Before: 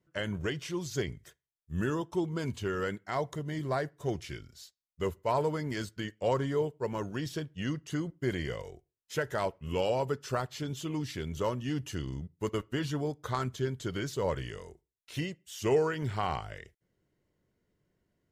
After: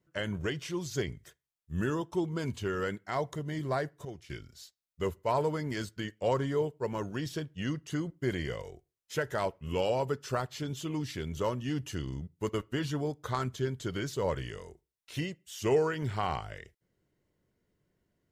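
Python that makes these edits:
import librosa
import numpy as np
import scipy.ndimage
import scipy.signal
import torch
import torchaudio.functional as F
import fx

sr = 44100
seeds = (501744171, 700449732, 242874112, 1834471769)

y = fx.edit(x, sr, fx.clip_gain(start_s=4.05, length_s=0.25, db=-10.5), tone=tone)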